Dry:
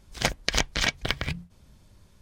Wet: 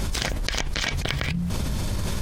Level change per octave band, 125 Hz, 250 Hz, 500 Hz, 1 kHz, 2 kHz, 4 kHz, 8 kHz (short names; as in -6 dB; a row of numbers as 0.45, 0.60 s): +8.5, +7.0, +1.0, +0.5, 0.0, 0.0, +0.5 dB